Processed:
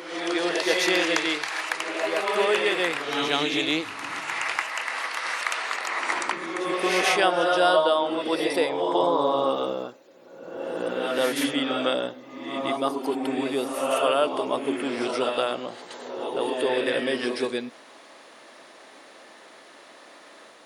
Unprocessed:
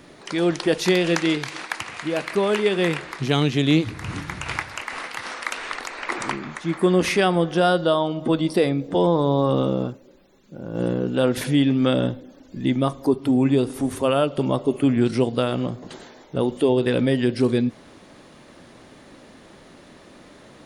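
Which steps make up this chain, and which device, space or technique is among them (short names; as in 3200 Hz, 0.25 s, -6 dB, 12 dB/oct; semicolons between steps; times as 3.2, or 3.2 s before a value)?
ghost voice (reverse; reverb RT60 1.1 s, pre-delay 0.111 s, DRR 1 dB; reverse; HPF 550 Hz 12 dB/oct)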